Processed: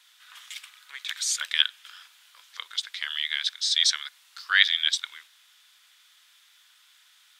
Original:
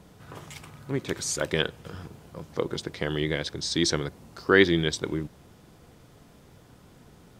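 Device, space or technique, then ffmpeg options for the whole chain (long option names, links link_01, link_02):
headphones lying on a table: -af "highpass=frequency=1500:width=0.5412,highpass=frequency=1500:width=1.3066,equalizer=frequency=3500:width_type=o:width=0.52:gain=8,volume=2.5dB"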